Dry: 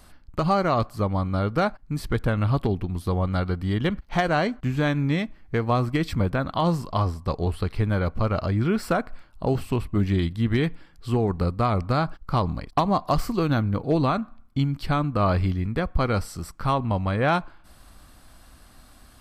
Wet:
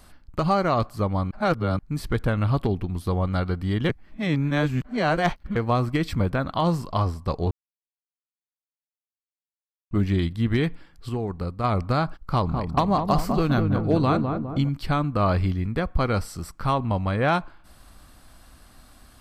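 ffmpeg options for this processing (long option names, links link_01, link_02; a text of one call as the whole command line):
ffmpeg -i in.wav -filter_complex "[0:a]asettb=1/sr,asplit=3[link_01][link_02][link_03];[link_01]atrim=end=12.204[link_04];[link_02]atrim=start=12.2:end=14.69,asetpts=PTS-STARTPTS,afade=type=in:duration=0.004:curve=qsin,afade=type=out:start_time=2.486:duration=0.004:curve=qsin,asplit=2[link_05][link_06];[link_06]adelay=204,lowpass=frequency=960:poles=1,volume=-4dB,asplit=2[link_07][link_08];[link_08]adelay=204,lowpass=frequency=960:poles=1,volume=0.54,asplit=2[link_09][link_10];[link_10]adelay=204,lowpass=frequency=960:poles=1,volume=0.54,asplit=2[link_11][link_12];[link_12]adelay=204,lowpass=frequency=960:poles=1,volume=0.54,asplit=2[link_13][link_14];[link_14]adelay=204,lowpass=frequency=960:poles=1,volume=0.54,asplit=2[link_15][link_16];[link_16]adelay=204,lowpass=frequency=960:poles=1,volume=0.54,asplit=2[link_17][link_18];[link_18]adelay=204,lowpass=frequency=960:poles=1,volume=0.54[link_19];[link_05][link_07][link_09][link_11][link_13][link_15][link_17][link_19]amix=inputs=8:normalize=0,atrim=end_sample=109809[link_20];[link_03]atrim=start=14.686[link_21];[link_04][link_20]acrossfade=duration=0.004:curve1=hsin:curve2=qsin[link_22];[link_22][link_21]acrossfade=duration=0.004:curve1=qsin:curve2=hsin,asplit=9[link_23][link_24][link_25][link_26][link_27][link_28][link_29][link_30][link_31];[link_23]atrim=end=1.312[link_32];[link_24]atrim=start=1.308:end=1.792,asetpts=PTS-STARTPTS,areverse[link_33];[link_25]atrim=start=1.788:end=3.892[link_34];[link_26]atrim=start=3.888:end=5.562,asetpts=PTS-STARTPTS,areverse[link_35];[link_27]atrim=start=5.558:end=7.51,asetpts=PTS-STARTPTS,afade=type=out:start_time=1.948:duration=0.004:curve=hsin[link_36];[link_28]atrim=start=7.51:end=9.91,asetpts=PTS-STARTPTS,volume=0[link_37];[link_29]atrim=start=9.91:end=11.092,asetpts=PTS-STARTPTS,afade=type=in:duration=0.004:curve=hsin[link_38];[link_30]atrim=start=11.088:end=11.642,asetpts=PTS-STARTPTS,volume=-5.5dB[link_39];[link_31]atrim=start=11.638[link_40];[link_32][link_33]acrossfade=duration=0.004:curve1=hsin:curve2=hsin[link_41];[link_41][link_34]acrossfade=duration=0.004:curve1=hsin:curve2=hsin[link_42];[link_42][link_35]acrossfade=duration=0.004:curve1=hsin:curve2=hsin[link_43];[link_36][link_37][link_38]concat=n=3:v=0:a=1[link_44];[link_43][link_44]acrossfade=duration=0.004:curve1=hsin:curve2=hsin[link_45];[link_45][link_39]acrossfade=duration=0.004:curve1=hsin:curve2=hsin[link_46];[link_46][link_40]acrossfade=duration=0.004:curve1=hsin:curve2=hsin" out.wav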